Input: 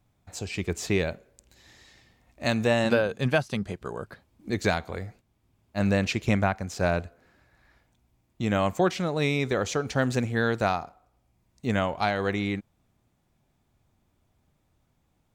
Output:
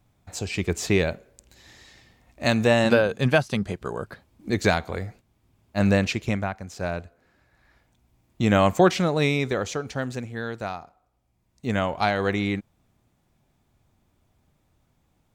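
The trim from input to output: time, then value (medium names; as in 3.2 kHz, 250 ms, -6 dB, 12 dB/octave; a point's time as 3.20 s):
5.94 s +4 dB
6.45 s -4 dB
7.05 s -4 dB
8.42 s +6 dB
8.99 s +6 dB
10.25 s -6.5 dB
10.81 s -6.5 dB
12.03 s +3 dB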